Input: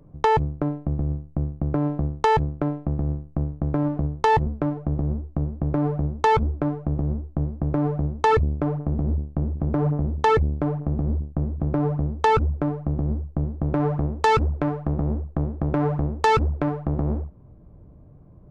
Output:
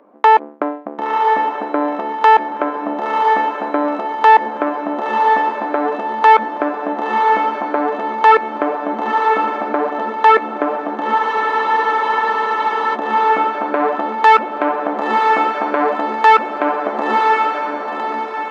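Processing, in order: echo that smears into a reverb 1010 ms, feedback 44%, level -6 dB; in parallel at -5 dB: saturation -15.5 dBFS, distortion -16 dB; on the sum: brick-wall FIR high-pass 200 Hz; three-band isolator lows -16 dB, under 580 Hz, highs -17 dB, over 3.1 kHz; spectral freeze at 11.21 s, 1.74 s; loudness maximiser +13.5 dB; trim -1 dB

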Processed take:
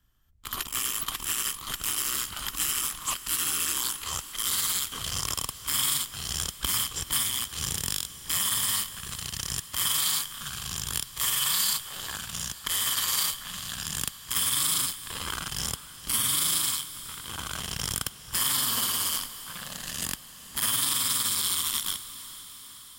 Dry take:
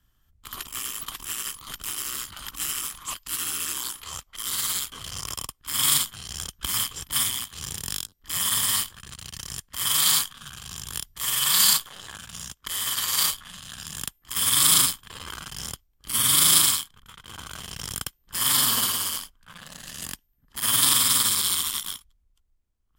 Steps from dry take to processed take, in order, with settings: compression 6:1, threshold -27 dBFS, peak gain reduction 13.5 dB; waveshaping leveller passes 1; on a send: echo that smears into a reverb 468 ms, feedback 64%, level -15.5 dB

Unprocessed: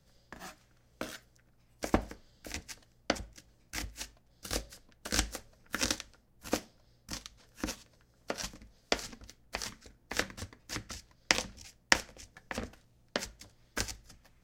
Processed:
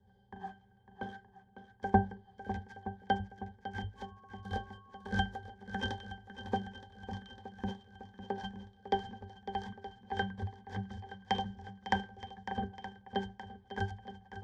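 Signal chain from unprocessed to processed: peaking EQ 830 Hz +9 dB 1 oct; pitch-class resonator G, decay 0.16 s; shuffle delay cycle 921 ms, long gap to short 1.5:1, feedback 50%, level -12 dB; 3.96–5.09 s: whistle 1.1 kHz -69 dBFS; trim +11 dB

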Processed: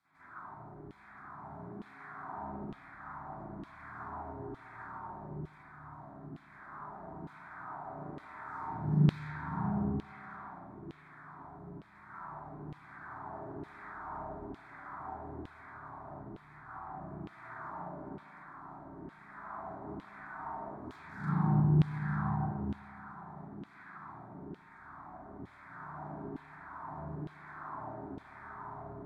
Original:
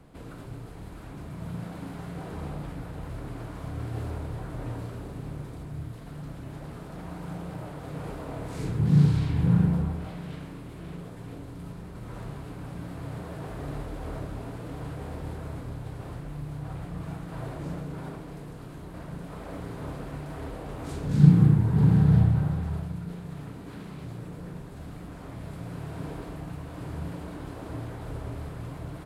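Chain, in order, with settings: tracing distortion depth 0.21 ms; static phaser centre 1.2 kHz, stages 4; feedback echo behind a low-pass 73 ms, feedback 83%, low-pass 920 Hz, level -5.5 dB; spring tank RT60 1 s, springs 39/51/59 ms, chirp 50 ms, DRR -9.5 dB; LFO band-pass saw down 1.1 Hz 350–3300 Hz; trim -2.5 dB

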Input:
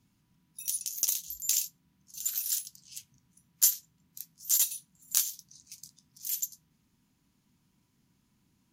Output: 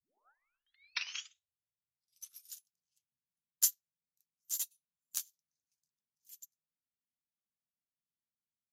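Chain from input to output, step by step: tape start-up on the opening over 2.63 s; upward expansion 2.5:1, over -42 dBFS; trim -4 dB

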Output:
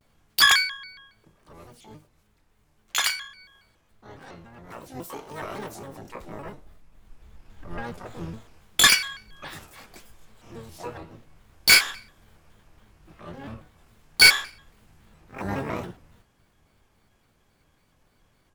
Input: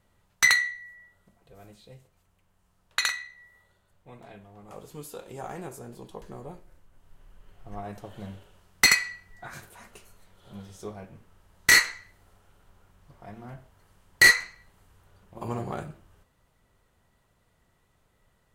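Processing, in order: harmony voices -7 st -7 dB, +12 st -1 dB; vibrato with a chosen wave square 3.6 Hz, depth 250 cents

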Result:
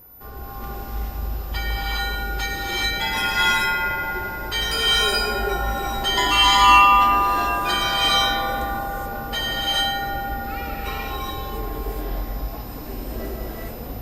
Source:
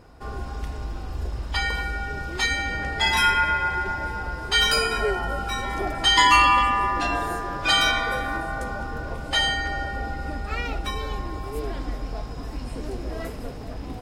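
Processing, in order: whistle 14 kHz -41 dBFS; gated-style reverb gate 450 ms rising, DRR -5.5 dB; trim -5 dB

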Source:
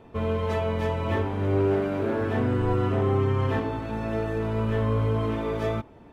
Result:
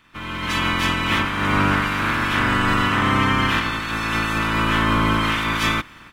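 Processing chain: spectral peaks clipped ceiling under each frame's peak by 25 dB; high-order bell 570 Hz -11.5 dB 1.3 oct; level rider gain up to 14 dB; trim -4.5 dB

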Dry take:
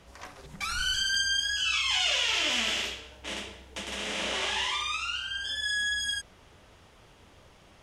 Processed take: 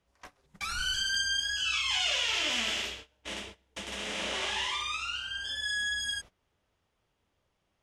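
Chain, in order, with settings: gate -42 dBFS, range -19 dB; trim -2.5 dB

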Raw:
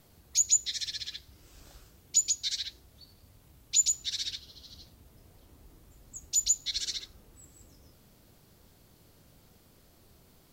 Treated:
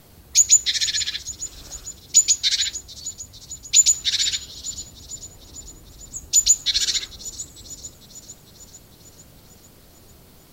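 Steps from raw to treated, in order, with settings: feedback echo behind a high-pass 449 ms, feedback 63%, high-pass 5.5 kHz, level -13 dB; dynamic bell 1.8 kHz, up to +6 dB, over -48 dBFS, Q 0.8; in parallel at -7 dB: saturation -19.5 dBFS, distortion -15 dB; 6.22–6.96 s: on the sum: band-stop 2.1 kHz, Q 8.3; trim +7.5 dB

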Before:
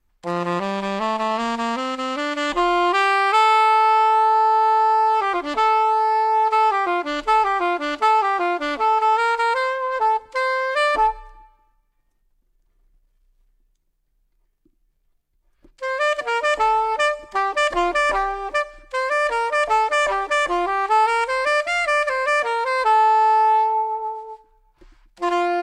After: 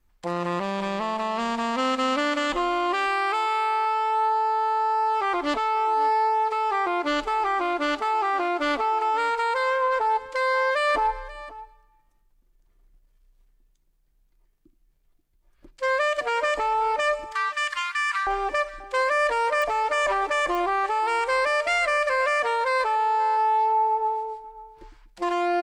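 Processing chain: 17.32–18.27 s: steep high-pass 1.2 kHz 48 dB/octave; peak limiter -18 dBFS, peak gain reduction 11.5 dB; delay 534 ms -17.5 dB; clicks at 19.62/20.55 s, -19 dBFS; trim +1.5 dB

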